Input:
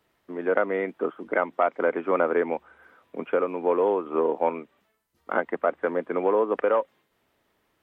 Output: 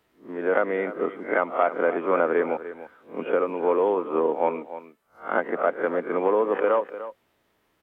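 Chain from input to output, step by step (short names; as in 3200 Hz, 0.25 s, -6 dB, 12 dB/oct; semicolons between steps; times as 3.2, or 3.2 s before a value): spectral swells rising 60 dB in 0.31 s; echo 0.298 s -13.5 dB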